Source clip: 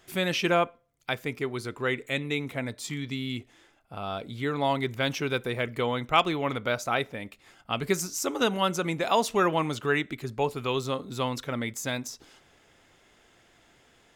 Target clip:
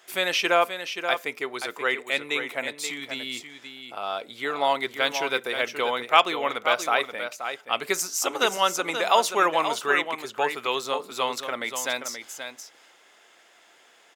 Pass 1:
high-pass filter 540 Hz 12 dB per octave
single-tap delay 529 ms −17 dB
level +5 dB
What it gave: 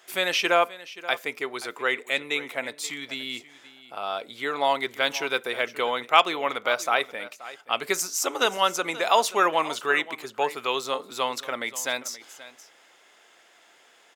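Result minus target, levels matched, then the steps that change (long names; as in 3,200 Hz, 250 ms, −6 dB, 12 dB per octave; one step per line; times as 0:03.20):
echo-to-direct −8.5 dB
change: single-tap delay 529 ms −8.5 dB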